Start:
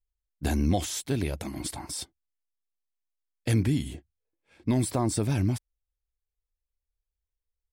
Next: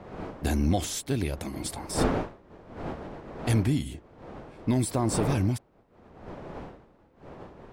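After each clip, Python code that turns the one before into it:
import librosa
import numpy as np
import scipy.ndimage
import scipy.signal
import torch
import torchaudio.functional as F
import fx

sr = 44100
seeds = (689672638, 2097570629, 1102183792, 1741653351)

y = fx.dmg_wind(x, sr, seeds[0], corner_hz=580.0, level_db=-37.0)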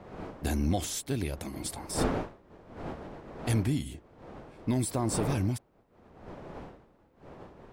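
y = fx.high_shelf(x, sr, hz=7600.0, db=4.0)
y = y * librosa.db_to_amplitude(-3.5)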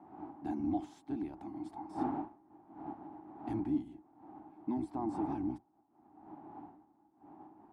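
y = fx.octave_divider(x, sr, octaves=1, level_db=-1.0)
y = fx.double_bandpass(y, sr, hz=500.0, octaves=1.4)
y = y * librosa.db_to_amplitude(2.5)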